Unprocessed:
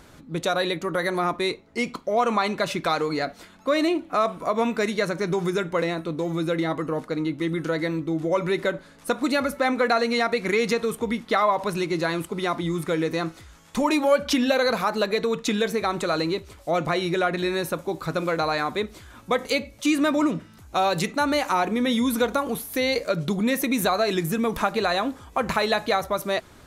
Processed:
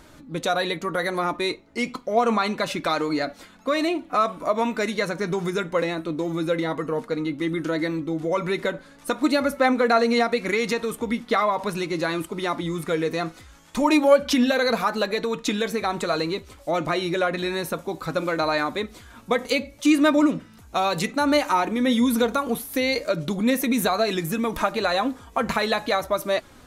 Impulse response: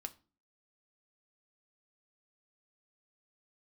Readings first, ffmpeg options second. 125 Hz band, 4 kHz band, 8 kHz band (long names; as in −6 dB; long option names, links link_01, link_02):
−1.5 dB, +0.5 dB, +0.5 dB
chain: -af "flanger=delay=3.2:depth=1.2:regen=55:speed=0.65:shape=sinusoidal,volume=4.5dB"